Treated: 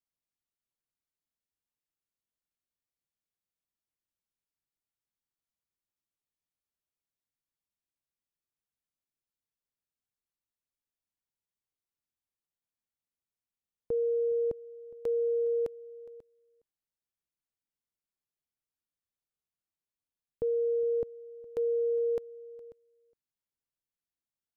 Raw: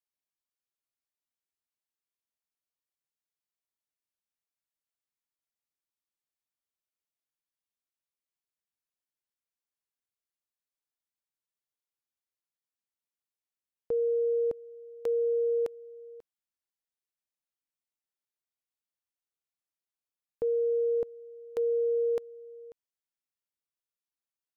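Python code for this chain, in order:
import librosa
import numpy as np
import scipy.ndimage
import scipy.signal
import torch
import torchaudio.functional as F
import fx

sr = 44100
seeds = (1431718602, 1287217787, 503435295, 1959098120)

p1 = fx.low_shelf(x, sr, hz=340.0, db=12.0)
p2 = p1 + fx.echo_single(p1, sr, ms=413, db=-21.0, dry=0)
y = p2 * librosa.db_to_amplitude(-5.5)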